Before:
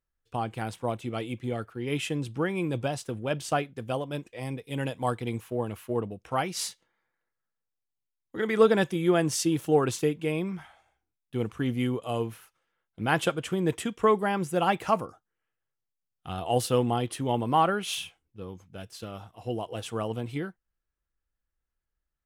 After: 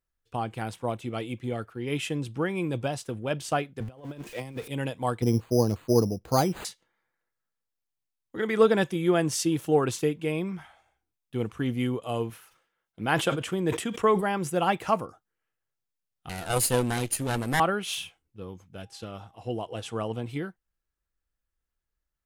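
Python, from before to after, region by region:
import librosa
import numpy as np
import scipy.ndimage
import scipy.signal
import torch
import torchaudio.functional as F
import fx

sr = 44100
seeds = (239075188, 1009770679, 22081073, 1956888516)

y = fx.chain(x, sr, fx.zero_step(step_db=-44.0),
    fx.over_compress(threshold_db=-36.0, ratio=-0.5),
    fx.band_widen(depth_pct=70), at=(3.8, 4.68))
y = fx.chain(y, sr, fx.tilt_shelf(db=9.5, hz=1300.0),
    fx.resample_bad(factor=8, down='none', up='hold'), at=(5.22, 6.65))
y = fx.chain(y, sr, fx.low_shelf(hz=69.0, db=-11.5),
    fx.sustainer(db_per_s=100.0), at=(12.3, 14.5))
y = fx.chain(y, sr, fx.lower_of_two(delay_ms=0.42),
    fx.peak_eq(hz=10000.0, db=14.0, octaves=1.4), at=(16.29, 17.6))
y = fx.lowpass(y, sr, hz=10000.0, slope=12, at=(18.81, 20.25), fade=0.02)
y = fx.dmg_tone(y, sr, hz=800.0, level_db=-62.0, at=(18.81, 20.25), fade=0.02)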